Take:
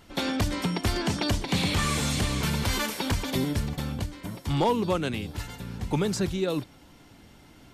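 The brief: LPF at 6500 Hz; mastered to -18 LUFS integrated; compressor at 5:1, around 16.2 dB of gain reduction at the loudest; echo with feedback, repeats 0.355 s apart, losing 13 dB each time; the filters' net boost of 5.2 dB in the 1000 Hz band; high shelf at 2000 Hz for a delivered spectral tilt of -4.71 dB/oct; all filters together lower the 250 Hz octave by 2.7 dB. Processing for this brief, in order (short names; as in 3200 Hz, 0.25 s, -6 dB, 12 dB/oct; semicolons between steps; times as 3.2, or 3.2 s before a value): LPF 6500 Hz; bell 250 Hz -4 dB; bell 1000 Hz +7.5 dB; high shelf 2000 Hz -5.5 dB; compressor 5:1, threshold -35 dBFS; feedback echo 0.355 s, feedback 22%, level -13 dB; gain +20.5 dB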